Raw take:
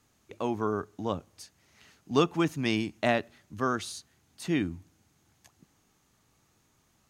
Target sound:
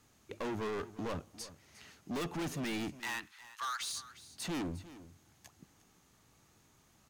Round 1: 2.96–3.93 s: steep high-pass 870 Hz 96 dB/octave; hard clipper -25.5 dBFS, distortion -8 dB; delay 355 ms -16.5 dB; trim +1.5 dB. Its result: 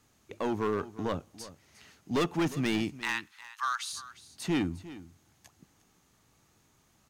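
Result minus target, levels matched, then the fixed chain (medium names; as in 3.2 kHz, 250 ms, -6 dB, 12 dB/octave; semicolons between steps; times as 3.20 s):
hard clipper: distortion -6 dB
2.96–3.93 s: steep high-pass 870 Hz 96 dB/octave; hard clipper -36.5 dBFS, distortion -2 dB; delay 355 ms -16.5 dB; trim +1.5 dB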